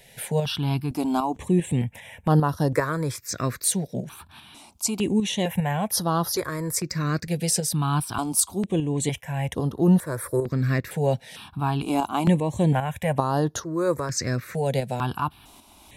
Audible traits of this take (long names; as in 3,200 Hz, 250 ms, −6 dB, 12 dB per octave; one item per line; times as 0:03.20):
tremolo saw up 2.5 Hz, depth 50%
notches that jump at a steady rate 2.2 Hz 310–7,800 Hz